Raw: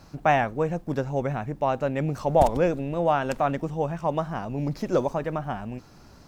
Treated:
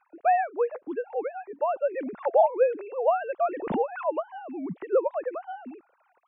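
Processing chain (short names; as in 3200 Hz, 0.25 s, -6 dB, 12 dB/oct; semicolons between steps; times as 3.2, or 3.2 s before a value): sine-wave speech; high shelf 2900 Hz -9 dB; 3.49–4.06 backwards sustainer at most 59 dB/s; gain -1.5 dB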